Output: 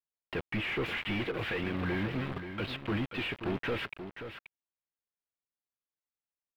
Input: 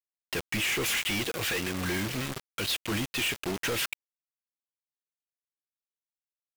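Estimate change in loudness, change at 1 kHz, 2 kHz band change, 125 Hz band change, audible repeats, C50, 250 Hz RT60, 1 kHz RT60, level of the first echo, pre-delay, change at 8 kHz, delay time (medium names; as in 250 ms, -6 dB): -5.0 dB, -2.0 dB, -4.5 dB, 0.0 dB, 1, no reverb, no reverb, no reverb, -9.5 dB, no reverb, under -25 dB, 531 ms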